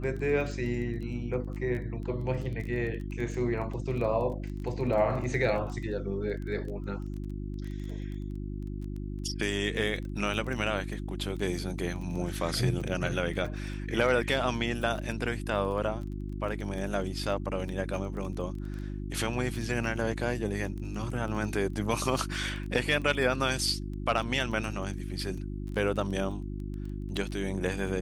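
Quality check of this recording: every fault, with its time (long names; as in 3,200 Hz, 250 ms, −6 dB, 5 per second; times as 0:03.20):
surface crackle 17 per second −36 dBFS
mains hum 50 Hz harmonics 7 −36 dBFS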